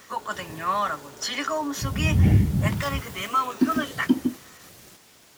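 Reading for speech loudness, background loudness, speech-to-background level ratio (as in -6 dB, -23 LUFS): -24.5 LUFS, -28.5 LUFS, 4.0 dB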